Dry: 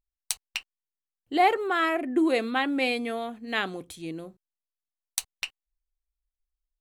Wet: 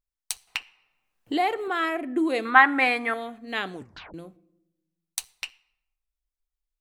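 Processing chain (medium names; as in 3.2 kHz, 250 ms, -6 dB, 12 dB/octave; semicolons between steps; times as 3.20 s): 2.45–3.14 s: high-order bell 1.3 kHz +15.5 dB; simulated room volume 3300 m³, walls furnished, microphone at 0.4 m; 0.47–1.68 s: three bands compressed up and down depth 70%; 3.74 s: tape stop 0.40 s; trim -1.5 dB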